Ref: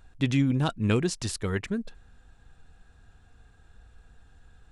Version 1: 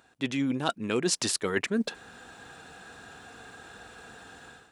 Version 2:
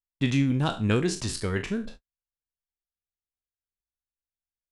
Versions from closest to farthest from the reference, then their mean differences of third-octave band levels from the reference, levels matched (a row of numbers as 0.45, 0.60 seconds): 2, 1; 4.0, 6.5 decibels